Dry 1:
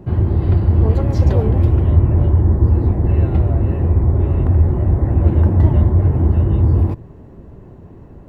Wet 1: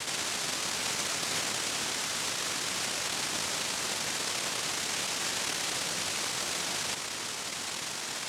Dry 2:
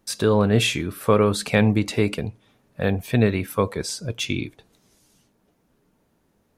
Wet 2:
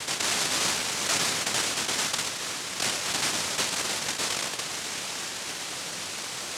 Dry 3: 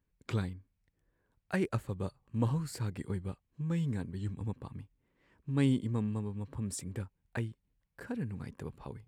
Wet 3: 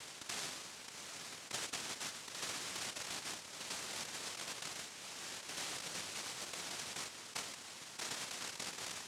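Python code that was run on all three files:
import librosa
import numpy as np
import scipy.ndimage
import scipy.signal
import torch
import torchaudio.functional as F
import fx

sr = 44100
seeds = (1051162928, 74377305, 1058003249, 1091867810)

y = fx.bin_compress(x, sr, power=0.2)
y = scipy.signal.sosfilt(scipy.signal.cheby1(2, 1.0, 690.0, 'highpass', fs=sr, output='sos'), y)
y = fx.noise_vocoder(y, sr, seeds[0], bands=1)
y = F.gain(torch.from_numpy(y), -9.0).numpy()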